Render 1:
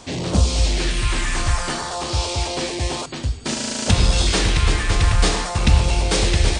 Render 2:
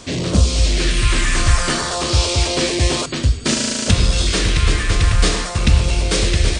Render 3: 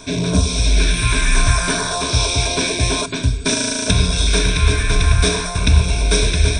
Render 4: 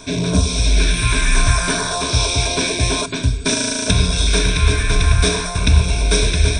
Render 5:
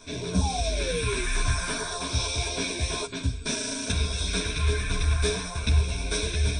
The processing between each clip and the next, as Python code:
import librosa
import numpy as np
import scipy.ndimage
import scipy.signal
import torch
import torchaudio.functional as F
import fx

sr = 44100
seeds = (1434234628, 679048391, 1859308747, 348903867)

y1 = fx.peak_eq(x, sr, hz=830.0, db=-9.5, octaves=0.43)
y1 = fx.rider(y1, sr, range_db=4, speed_s=0.5)
y1 = F.gain(torch.from_numpy(y1), 3.5).numpy()
y2 = fx.ripple_eq(y1, sr, per_octave=1.6, db=15)
y2 = F.gain(torch.from_numpy(y2), -2.0).numpy()
y3 = y2
y4 = fx.spec_paint(y3, sr, seeds[0], shape='fall', start_s=0.41, length_s=0.84, low_hz=350.0, high_hz=860.0, level_db=-21.0)
y4 = fx.ensemble(y4, sr)
y4 = F.gain(torch.from_numpy(y4), -7.5).numpy()